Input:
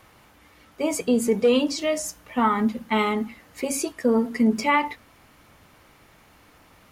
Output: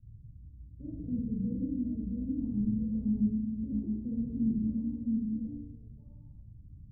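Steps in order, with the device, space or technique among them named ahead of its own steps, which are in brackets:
echo through a band-pass that steps 664 ms, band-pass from 290 Hz, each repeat 1.4 octaves, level −2 dB
club heard from the street (brickwall limiter −14 dBFS, peak gain reduction 5.5 dB; low-pass filter 140 Hz 24 dB per octave; convolution reverb RT60 1.0 s, pre-delay 24 ms, DRR −5.5 dB)
level +6 dB

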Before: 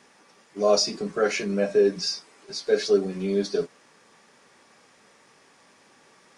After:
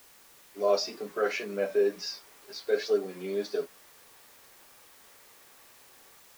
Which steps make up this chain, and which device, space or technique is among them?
dictaphone (band-pass filter 360–4,100 Hz; automatic gain control gain up to 4 dB; tape wow and flutter; white noise bed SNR 24 dB)
level −7.5 dB

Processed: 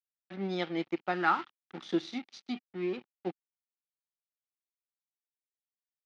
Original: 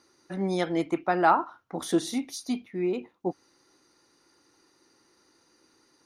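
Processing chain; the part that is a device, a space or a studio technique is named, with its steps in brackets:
blown loudspeaker (dead-zone distortion −40 dBFS; loudspeaker in its box 210–4,400 Hz, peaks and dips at 280 Hz −7 dB, 460 Hz −8 dB, 650 Hz −7 dB, 1,000 Hz −9 dB, 1,600 Hz −5 dB)
0:01.14–0:01.82: graphic EQ with 15 bands 630 Hz −10 dB, 1,600 Hz +5 dB, 10,000 Hz +6 dB

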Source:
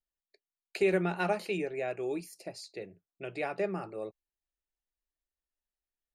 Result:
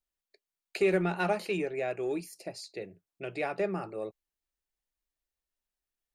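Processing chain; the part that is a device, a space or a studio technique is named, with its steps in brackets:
parallel distortion (in parallel at −12 dB: hard clipping −30 dBFS, distortion −8 dB)

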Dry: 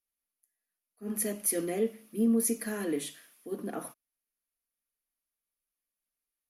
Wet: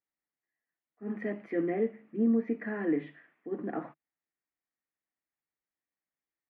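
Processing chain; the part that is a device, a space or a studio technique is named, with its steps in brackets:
0:01.53–0:03.53: high-frequency loss of the air 140 metres
bass cabinet (loudspeaker in its box 64–2,200 Hz, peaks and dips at 150 Hz +6 dB, 320 Hz +7 dB, 790 Hz +5 dB, 1,900 Hz +8 dB)
level −1.5 dB

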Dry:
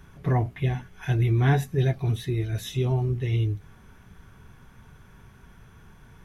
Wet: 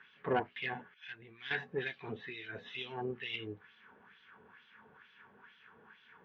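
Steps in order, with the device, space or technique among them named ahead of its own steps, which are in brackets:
wah-wah guitar rig (LFO wah 2.2 Hz 600–3,500 Hz, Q 2.1; tube saturation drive 27 dB, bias 0.6; loudspeaker in its box 86–4,400 Hz, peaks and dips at 120 Hz −5 dB, 220 Hz +8 dB, 460 Hz +6 dB, 660 Hz −7 dB, 1,700 Hz +6 dB, 2,900 Hz +5 dB)
0:00.94–0:01.51: guitar amp tone stack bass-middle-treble 5-5-5
level +5 dB

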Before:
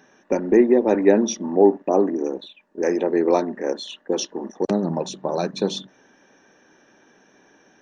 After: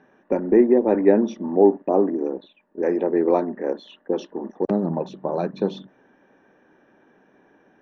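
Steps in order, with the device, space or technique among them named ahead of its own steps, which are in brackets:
phone in a pocket (low-pass filter 3,000 Hz 12 dB per octave; high-shelf EQ 2,100 Hz −9.5 dB)

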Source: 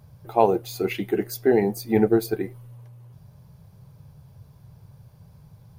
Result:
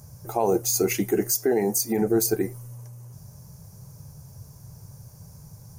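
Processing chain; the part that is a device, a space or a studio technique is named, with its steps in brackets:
over-bright horn tweeter (high shelf with overshoot 4,700 Hz +10.5 dB, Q 3; brickwall limiter −16 dBFS, peak gain reduction 11 dB)
0:01.31–0:02.02: high-pass filter 220 Hz 6 dB per octave
level +3.5 dB

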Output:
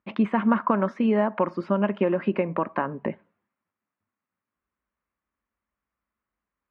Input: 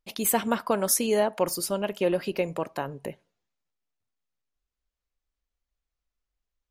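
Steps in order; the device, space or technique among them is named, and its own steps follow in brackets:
bass amplifier (downward compressor 3 to 1, threshold −28 dBFS, peak gain reduction 8 dB; loudspeaker in its box 72–2,100 Hz, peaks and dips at 75 Hz −10 dB, 140 Hz −8 dB, 210 Hz +6 dB, 460 Hz −6 dB, 730 Hz −5 dB, 1,100 Hz +5 dB)
level +9 dB

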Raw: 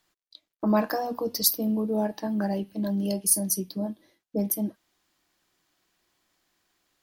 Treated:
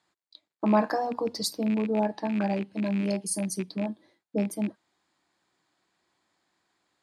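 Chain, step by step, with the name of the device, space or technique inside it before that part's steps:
0:01.65–0:02.73: low-pass filter 9,300 Hz 12 dB per octave
car door speaker with a rattle (loose part that buzzes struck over −31 dBFS, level −27 dBFS; loudspeaker in its box 92–8,100 Hz, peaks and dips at 880 Hz +4 dB, 2,900 Hz −6 dB, 5,800 Hz −10 dB)

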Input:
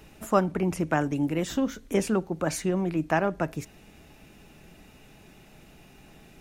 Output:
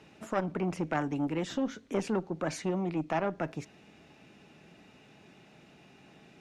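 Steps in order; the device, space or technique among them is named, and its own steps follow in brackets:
0:02.62–0:03.23: notch filter 1,600 Hz, Q 6
valve radio (band-pass filter 130–5,500 Hz; tube saturation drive 13 dB, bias 0.3; saturating transformer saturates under 620 Hz)
level −2 dB

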